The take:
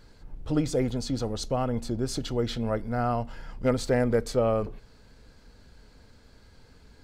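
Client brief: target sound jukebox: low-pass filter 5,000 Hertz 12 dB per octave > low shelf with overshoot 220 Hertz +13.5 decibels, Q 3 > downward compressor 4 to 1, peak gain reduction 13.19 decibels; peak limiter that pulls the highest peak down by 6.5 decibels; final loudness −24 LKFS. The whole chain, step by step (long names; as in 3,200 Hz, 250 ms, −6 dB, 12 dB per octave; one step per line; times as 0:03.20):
brickwall limiter −20.5 dBFS
low-pass filter 5,000 Hz 12 dB per octave
low shelf with overshoot 220 Hz +13.5 dB, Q 3
downward compressor 4 to 1, threshold −25 dBFS
level +4.5 dB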